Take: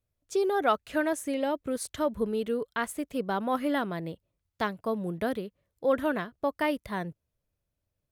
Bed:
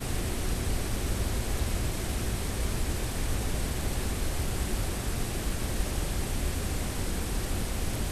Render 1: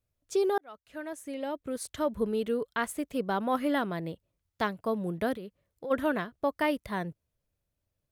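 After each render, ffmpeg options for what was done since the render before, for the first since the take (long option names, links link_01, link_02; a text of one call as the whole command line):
ffmpeg -i in.wav -filter_complex "[0:a]asplit=3[link_01][link_02][link_03];[link_01]afade=type=out:start_time=5.34:duration=0.02[link_04];[link_02]acompressor=threshold=-38dB:ratio=3:attack=3.2:release=140:knee=1:detection=peak,afade=type=in:start_time=5.34:duration=0.02,afade=type=out:start_time=5.9:duration=0.02[link_05];[link_03]afade=type=in:start_time=5.9:duration=0.02[link_06];[link_04][link_05][link_06]amix=inputs=3:normalize=0,asplit=2[link_07][link_08];[link_07]atrim=end=0.58,asetpts=PTS-STARTPTS,afade=type=out:start_time=0.576:duration=0.004:curve=hsin[link_09];[link_08]atrim=start=0.58,asetpts=PTS-STARTPTS,afade=type=in:duration=1.7[link_10];[link_09][link_10]concat=n=2:v=0:a=1" out.wav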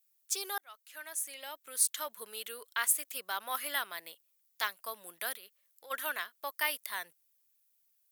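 ffmpeg -i in.wav -af "highpass=1300,aemphasis=mode=production:type=75fm" out.wav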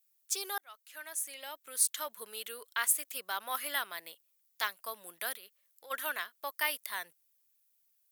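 ffmpeg -i in.wav -af anull out.wav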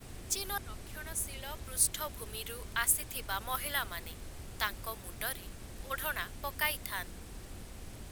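ffmpeg -i in.wav -i bed.wav -filter_complex "[1:a]volume=-16dB[link_01];[0:a][link_01]amix=inputs=2:normalize=0" out.wav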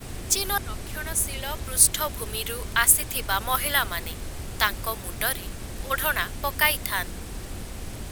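ffmpeg -i in.wav -af "volume=11dB" out.wav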